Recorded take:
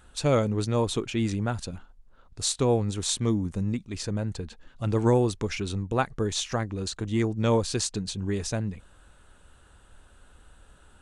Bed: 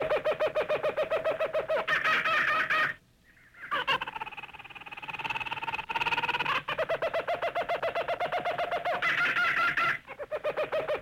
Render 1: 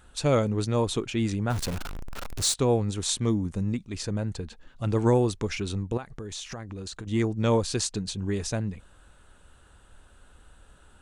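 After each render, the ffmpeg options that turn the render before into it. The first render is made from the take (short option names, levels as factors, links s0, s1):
-filter_complex "[0:a]asettb=1/sr,asplit=3[s0][s1][s2];[s0]atrim=end=1.504[s3];[s1]atrim=start=1.5:end=2.54,asetpts=PTS-STARTPTS,afade=t=in:d=0.004:c=qsin,afade=t=out:st=1.036:d=0.004:c=qsin,aeval=exprs='val(0)+0.5*0.0376*sgn(val(0))':c=same[s4];[s2]atrim=start=2.536[s5];[s3][s4]acrossfade=d=0.004:c1=hsin:c2=qsin[s6];[s6][s5]acrossfade=d=0.004:c1=qsin:c2=hsin,asettb=1/sr,asplit=3[s7][s8][s9];[s7]atrim=end=5.974[s10];[s8]atrim=start=5.97:end=7.07,asetpts=PTS-STARTPTS,afade=t=in:d=0.004:c=qsin,afade=t=out:st=1.096:d=0.004:c=qsin,acompressor=threshold=0.0224:ratio=8:attack=3.2:release=140:knee=1:detection=peak[s11];[s9]atrim=start=7.066[s12];[s10][s11]acrossfade=d=0.004:c1=hsin:c2=qsin[s13];[s13][s12]acrossfade=d=0.004:c1=qsin:c2=hsin"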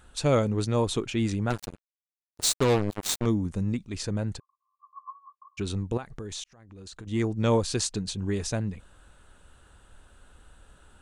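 -filter_complex "[0:a]asettb=1/sr,asplit=3[s0][s1][s2];[s0]atrim=end=1.504[s3];[s1]atrim=start=1.5:end=3.26,asetpts=PTS-STARTPTS,afade=t=in:d=0.004:c=qsin,afade=t=out:st=1.756:d=0.004:c=qsin,acrusher=bits=3:mix=0:aa=0.5[s4];[s2]atrim=start=3.256[s5];[s3][s4]acrossfade=d=0.004:c1=hsin:c2=qsin[s6];[s6][s5]acrossfade=d=0.004:c1=qsin:c2=hsin,asplit=3[s7][s8][s9];[s7]afade=t=out:st=4.38:d=0.02[s10];[s8]asuperpass=centerf=1100:order=12:qfactor=7.8,afade=t=in:st=4.38:d=0.02,afade=t=out:st=5.57:d=0.02[s11];[s9]afade=t=in:st=5.57:d=0.02[s12];[s10][s11][s12]amix=inputs=3:normalize=0,asplit=2[s13][s14];[s13]atrim=end=6.44,asetpts=PTS-STARTPTS,afade=t=out:st=6.436:d=0.004:c=hsin[s15];[s14]atrim=start=6.44,asetpts=PTS-STARTPTS,afade=t=in:d=0.91[s16];[s15][s16]concat=n=2:v=0:a=1"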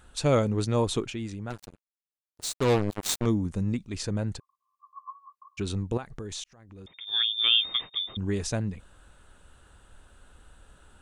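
-filter_complex "[0:a]asettb=1/sr,asplit=3[s0][s1][s2];[s0]atrim=end=6.864[s3];[s1]atrim=start=6.86:end=8.17,asetpts=PTS-STARTPTS,afade=t=in:d=0.004:c=qsin,afade=t=out:st=1.306:d=0.004:c=qsin,lowpass=f=3100:t=q:w=0.5098,lowpass=f=3100:t=q:w=0.6013,lowpass=f=3100:t=q:w=0.9,lowpass=f=3100:t=q:w=2.563,afreqshift=-3700[s4];[s2]atrim=start=8.166[s5];[s3][s4]acrossfade=d=0.004:c1=hsin:c2=qsin[s6];[s6][s5]acrossfade=d=0.004:c1=qsin:c2=hsin,asplit=3[s7][s8][s9];[s7]atrim=end=1.18,asetpts=PTS-STARTPTS,afade=t=out:st=1.06:d=0.12:silence=0.375837[s10];[s8]atrim=start=1.18:end=2.56,asetpts=PTS-STARTPTS,volume=0.376[s11];[s9]atrim=start=2.56,asetpts=PTS-STARTPTS,afade=t=in:d=0.12:silence=0.375837[s12];[s10][s11][s12]concat=n=3:v=0:a=1"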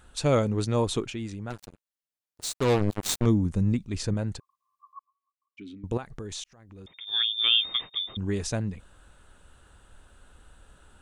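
-filter_complex "[0:a]asettb=1/sr,asplit=3[s0][s1][s2];[s0]atrim=end=2.814[s3];[s1]atrim=start=2.81:end=4.14,asetpts=PTS-STARTPTS,afade=t=in:d=0.004:c=qsin,afade=t=out:st=1.326:d=0.004:c=qsin,lowshelf=f=250:g=5.5[s4];[s2]atrim=start=4.136[s5];[s3][s4]acrossfade=d=0.004:c1=hsin:c2=qsin[s6];[s6][s5]acrossfade=d=0.004:c1=qsin:c2=hsin,asettb=1/sr,asplit=3[s7][s8][s9];[s7]atrim=end=4.994[s10];[s8]atrim=start=4.99:end=5.84,asetpts=PTS-STARTPTS,afade=t=in:d=0.004:c=qsin,afade=t=out:st=0.846:d=0.004:c=qsin,asplit=3[s11][s12][s13];[s11]bandpass=f=270:t=q:w=8,volume=1[s14];[s12]bandpass=f=2290:t=q:w=8,volume=0.501[s15];[s13]bandpass=f=3010:t=q:w=8,volume=0.355[s16];[s14][s15][s16]amix=inputs=3:normalize=0[s17];[s9]atrim=start=5.836[s18];[s10][s17]acrossfade=d=0.004:c1=hsin:c2=qsin[s19];[s19][s18]acrossfade=d=0.004:c1=qsin:c2=hsin"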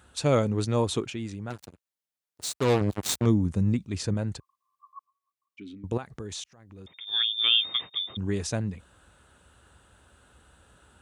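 -af "highpass=f=59:w=0.5412,highpass=f=59:w=1.3066"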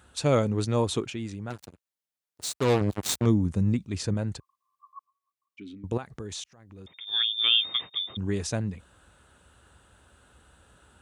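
-af anull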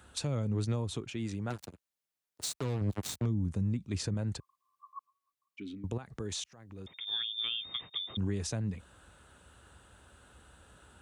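-filter_complex "[0:a]acrossover=split=190[s0][s1];[s1]acompressor=threshold=0.0251:ratio=10[s2];[s0][s2]amix=inputs=2:normalize=0,alimiter=limit=0.0668:level=0:latency=1:release=361"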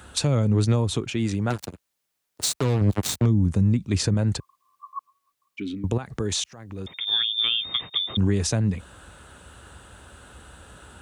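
-af "volume=3.76"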